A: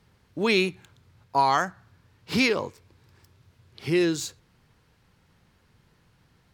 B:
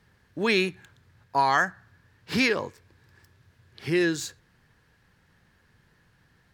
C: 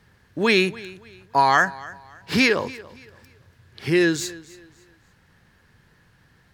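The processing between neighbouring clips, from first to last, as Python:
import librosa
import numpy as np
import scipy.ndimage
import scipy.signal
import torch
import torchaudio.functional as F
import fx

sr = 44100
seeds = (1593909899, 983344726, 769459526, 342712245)

y1 = fx.peak_eq(x, sr, hz=1700.0, db=10.5, octaves=0.29)
y1 = y1 * 10.0 ** (-1.5 / 20.0)
y2 = fx.echo_feedback(y1, sr, ms=284, feedback_pct=32, wet_db=-20)
y2 = y2 * 10.0 ** (5.0 / 20.0)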